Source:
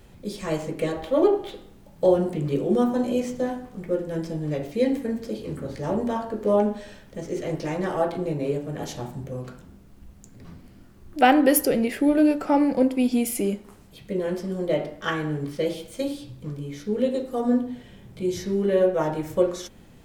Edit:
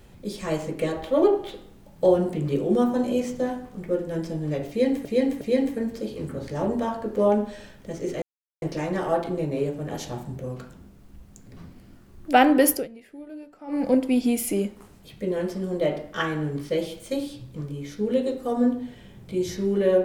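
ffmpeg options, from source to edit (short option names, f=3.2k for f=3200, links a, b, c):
-filter_complex "[0:a]asplit=6[a][b][c][d][e][f];[a]atrim=end=5.052[g];[b]atrim=start=4.688:end=5.052[h];[c]atrim=start=4.688:end=7.5,asetpts=PTS-STARTPTS,afade=t=out:st=2.808:d=0.004:c=hsin,apad=pad_dur=0.4[i];[d]atrim=start=7.5:end=11.76,asetpts=PTS-STARTPTS,afade=t=in:d=0.004:c=hsin,afade=t=out:st=4.08:d=0.18:silence=0.0841395[j];[e]atrim=start=11.76:end=12.55,asetpts=PTS-STARTPTS,volume=-21.5dB[k];[f]atrim=start=12.55,asetpts=PTS-STARTPTS,afade=t=in:d=0.18:silence=0.0841395[l];[g][h]acrossfade=d=0.004:c1=hsin:c2=hsin[m];[i][j][k][l]concat=n=4:v=0:a=1[n];[m][n]acrossfade=d=0.004:c1=hsin:c2=hsin"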